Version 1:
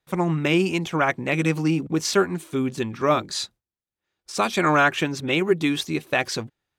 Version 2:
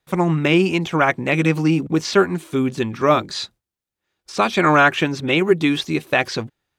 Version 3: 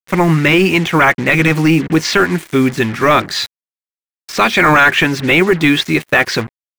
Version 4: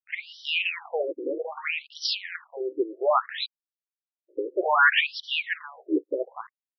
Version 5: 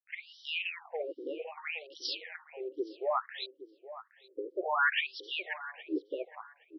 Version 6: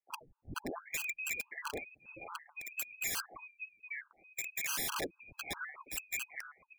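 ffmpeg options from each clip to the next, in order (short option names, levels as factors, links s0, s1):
-filter_complex "[0:a]acrossover=split=5100[s0][s1];[s1]acompressor=threshold=0.00501:ratio=4:attack=1:release=60[s2];[s0][s2]amix=inputs=2:normalize=0,volume=1.68"
-af "acrusher=bits=5:mix=0:aa=0.5,equalizer=f=1900:t=o:w=0.85:g=8.5,apsyclip=3.76,volume=0.596"
-af "afftfilt=real='re*between(b*sr/1024,370*pow(4200/370,0.5+0.5*sin(2*PI*0.62*pts/sr))/1.41,370*pow(4200/370,0.5+0.5*sin(2*PI*0.62*pts/sr))*1.41)':imag='im*between(b*sr/1024,370*pow(4200/370,0.5+0.5*sin(2*PI*0.62*pts/sr))/1.41,370*pow(4200/370,0.5+0.5*sin(2*PI*0.62*pts/sr))*1.41)':win_size=1024:overlap=0.75,volume=0.447"
-filter_complex "[0:a]asplit=2[s0][s1];[s1]adelay=819,lowpass=f=1600:p=1,volume=0.2,asplit=2[s2][s3];[s3]adelay=819,lowpass=f=1600:p=1,volume=0.3,asplit=2[s4][s5];[s5]adelay=819,lowpass=f=1600:p=1,volume=0.3[s6];[s0][s2][s4][s6]amix=inputs=4:normalize=0,volume=0.355"
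-af "lowpass=f=2500:t=q:w=0.5098,lowpass=f=2500:t=q:w=0.6013,lowpass=f=2500:t=q:w=0.9,lowpass=f=2500:t=q:w=2.563,afreqshift=-2900,aeval=exprs='(mod(37.6*val(0)+1,2)-1)/37.6':c=same,afftfilt=real='re*gt(sin(2*PI*4.6*pts/sr)*(1-2*mod(floor(b*sr/1024/820),2)),0)':imag='im*gt(sin(2*PI*4.6*pts/sr)*(1-2*mod(floor(b*sr/1024/820),2)),0)':win_size=1024:overlap=0.75,volume=1.5"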